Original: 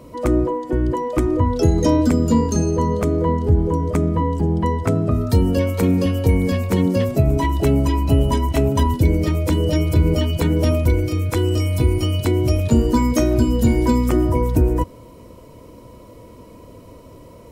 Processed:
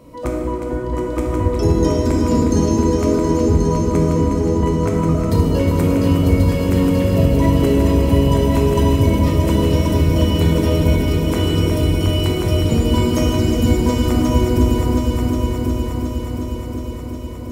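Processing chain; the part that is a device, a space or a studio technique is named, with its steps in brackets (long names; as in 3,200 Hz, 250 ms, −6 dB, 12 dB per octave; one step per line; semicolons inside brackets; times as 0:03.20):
echo machine with several playback heads 361 ms, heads all three, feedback 62%, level −8.5 dB
stairwell (convolution reverb RT60 2.4 s, pre-delay 13 ms, DRR −1 dB)
level −3.5 dB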